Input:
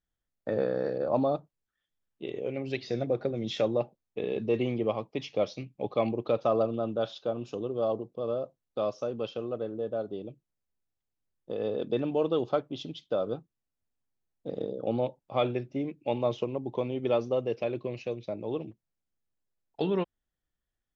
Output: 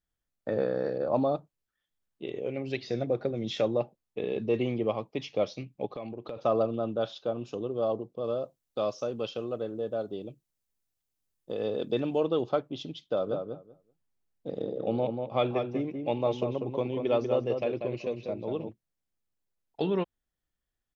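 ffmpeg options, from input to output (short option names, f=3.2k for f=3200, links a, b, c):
-filter_complex "[0:a]asplit=3[a][b][c];[a]afade=t=out:st=5.85:d=0.02[d];[b]acompressor=threshold=-35dB:ratio=6:attack=3.2:release=140:knee=1:detection=peak,afade=t=in:st=5.85:d=0.02,afade=t=out:st=6.36:d=0.02[e];[c]afade=t=in:st=6.36:d=0.02[f];[d][e][f]amix=inputs=3:normalize=0,asettb=1/sr,asplit=3[g][h][i];[g]atrim=end=8.244[j];[h]atrim=start=8.24:end=12.2,asetpts=PTS-STARTPTS,afade=t=in:d=0.004:c=qsin,afade=t=out:st=3.956:d=0.004:c=qsin,highshelf=f=4k:g=9[k];[i]atrim=start=12.196[l];[j][k]acrossfade=d=0.004:c1=hsin:c2=qsin[m];[m][l]acrossfade=d=0.004:c1=qsin:c2=hsin,asplit=3[n][o][p];[n]afade=t=out:st=13.16:d=0.02[q];[o]asplit=2[r][s];[s]adelay=191,lowpass=f=2.1k:p=1,volume=-5dB,asplit=2[t][u];[u]adelay=191,lowpass=f=2.1k:p=1,volume=0.16,asplit=2[v][w];[w]adelay=191,lowpass=f=2.1k:p=1,volume=0.16[x];[r][t][v][x]amix=inputs=4:normalize=0,afade=t=in:st=13.16:d=0.02,afade=t=out:st=18.68:d=0.02[y];[p]afade=t=in:st=18.68:d=0.02[z];[q][y][z]amix=inputs=3:normalize=0"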